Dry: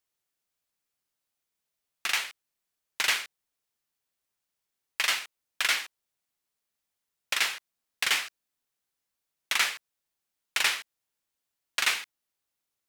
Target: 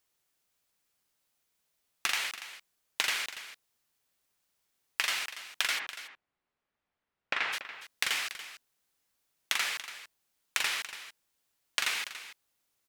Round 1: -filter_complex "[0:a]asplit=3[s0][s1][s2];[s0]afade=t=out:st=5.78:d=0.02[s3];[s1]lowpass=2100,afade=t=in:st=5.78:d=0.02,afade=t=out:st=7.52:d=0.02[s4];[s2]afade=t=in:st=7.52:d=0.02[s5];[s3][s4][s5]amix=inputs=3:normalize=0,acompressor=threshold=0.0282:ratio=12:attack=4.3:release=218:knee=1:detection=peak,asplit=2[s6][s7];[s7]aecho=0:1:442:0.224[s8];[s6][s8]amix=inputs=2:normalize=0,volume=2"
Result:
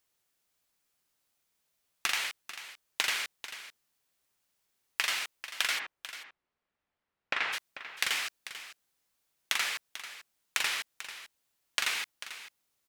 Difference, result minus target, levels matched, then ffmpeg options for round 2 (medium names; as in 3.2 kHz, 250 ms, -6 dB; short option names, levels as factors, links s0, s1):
echo 157 ms late
-filter_complex "[0:a]asplit=3[s0][s1][s2];[s0]afade=t=out:st=5.78:d=0.02[s3];[s1]lowpass=2100,afade=t=in:st=5.78:d=0.02,afade=t=out:st=7.52:d=0.02[s4];[s2]afade=t=in:st=7.52:d=0.02[s5];[s3][s4][s5]amix=inputs=3:normalize=0,acompressor=threshold=0.0282:ratio=12:attack=4.3:release=218:knee=1:detection=peak,asplit=2[s6][s7];[s7]aecho=0:1:285:0.224[s8];[s6][s8]amix=inputs=2:normalize=0,volume=2"